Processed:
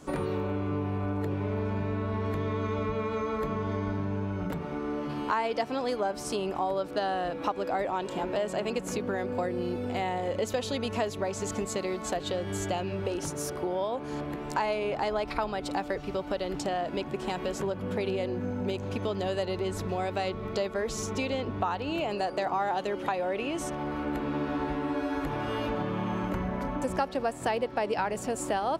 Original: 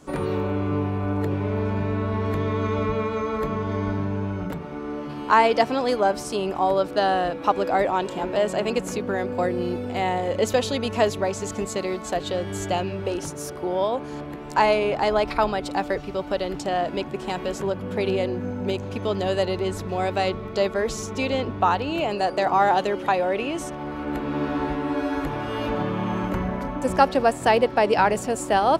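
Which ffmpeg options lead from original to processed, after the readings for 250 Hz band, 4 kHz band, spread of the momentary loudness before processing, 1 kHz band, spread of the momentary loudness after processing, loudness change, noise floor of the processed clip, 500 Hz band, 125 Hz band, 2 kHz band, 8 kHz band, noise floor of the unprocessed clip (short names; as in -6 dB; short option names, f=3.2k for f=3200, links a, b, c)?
-5.5 dB, -6.5 dB, 8 LU, -8.5 dB, 3 LU, -7.0 dB, -39 dBFS, -7.0 dB, -5.5 dB, -7.5 dB, -3.5 dB, -34 dBFS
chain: -af "acompressor=threshold=-29dB:ratio=3"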